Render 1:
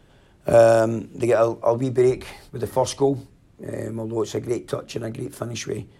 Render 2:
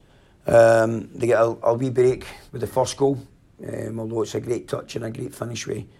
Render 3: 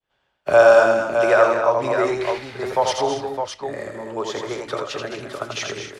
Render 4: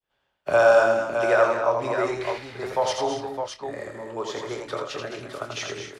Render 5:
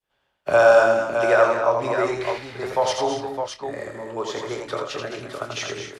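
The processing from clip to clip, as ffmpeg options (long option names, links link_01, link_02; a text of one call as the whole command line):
ffmpeg -i in.wav -af "adynamicequalizer=threshold=0.00794:dfrequency=1500:dqfactor=3.8:tfrequency=1500:tqfactor=3.8:attack=5:release=100:ratio=0.375:range=2.5:mode=boostabove:tftype=bell" out.wav
ffmpeg -i in.wav -filter_complex "[0:a]acrossover=split=590 5800:gain=0.158 1 0.112[link_01][link_02][link_03];[link_01][link_02][link_03]amix=inputs=3:normalize=0,agate=range=-33dB:threshold=-49dB:ratio=3:detection=peak,aecho=1:1:84|165|213|239|278|611:0.596|0.141|0.355|0.237|0.2|0.473,volume=5.5dB" out.wav
ffmpeg -i in.wav -filter_complex "[0:a]asplit=2[link_01][link_02];[link_02]adelay=25,volume=-9.5dB[link_03];[link_01][link_03]amix=inputs=2:normalize=0,volume=-4.5dB" out.wav
ffmpeg -i in.wav -af "aresample=32000,aresample=44100,volume=2.5dB" out.wav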